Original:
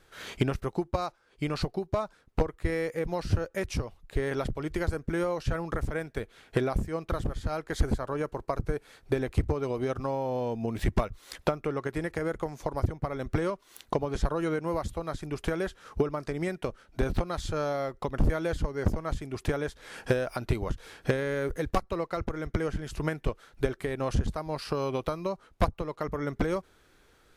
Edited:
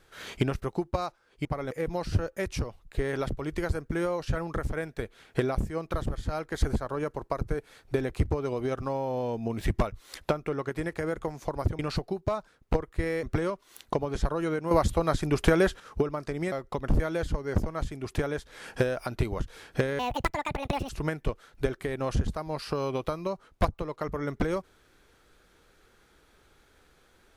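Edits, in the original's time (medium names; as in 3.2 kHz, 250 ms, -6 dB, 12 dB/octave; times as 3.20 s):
1.45–2.89 s: swap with 12.97–13.23 s
14.71–15.80 s: gain +8.5 dB
16.52–17.82 s: delete
21.29–22.89 s: speed 177%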